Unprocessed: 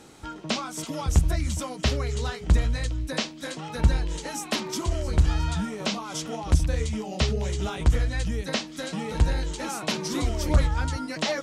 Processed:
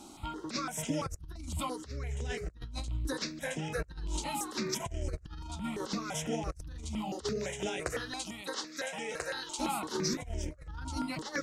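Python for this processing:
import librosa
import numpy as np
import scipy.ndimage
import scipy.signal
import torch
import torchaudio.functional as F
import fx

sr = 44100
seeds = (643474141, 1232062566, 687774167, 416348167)

y = fx.highpass(x, sr, hz=fx.line((7.23, 240.0), (9.58, 650.0)), slope=12, at=(7.23, 9.58), fade=0.02)
y = fx.over_compress(y, sr, threshold_db=-30.0, ratio=-0.5)
y = fx.phaser_held(y, sr, hz=5.9, low_hz=480.0, high_hz=4200.0)
y = F.gain(torch.from_numpy(y), -3.0).numpy()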